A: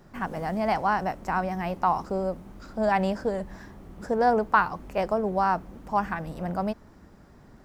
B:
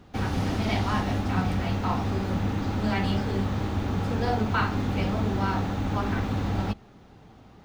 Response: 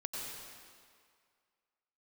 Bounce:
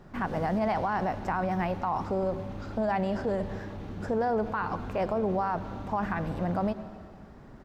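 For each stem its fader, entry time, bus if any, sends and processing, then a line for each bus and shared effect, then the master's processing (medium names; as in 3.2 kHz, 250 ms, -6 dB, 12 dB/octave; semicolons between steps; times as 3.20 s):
+1.5 dB, 0.00 s, send -14 dB, treble shelf 4.6 kHz -11 dB; peak limiter -20 dBFS, peak gain reduction 12 dB
-15.5 dB, 0.6 ms, send -4 dB, low-pass 7.2 kHz; peak limiter -23 dBFS, peak gain reduction 9 dB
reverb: on, RT60 2.1 s, pre-delay 85 ms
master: peak limiter -20 dBFS, peak gain reduction 4.5 dB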